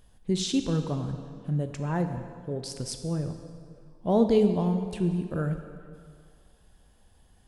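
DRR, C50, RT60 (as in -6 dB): 6.5 dB, 7.5 dB, 2.1 s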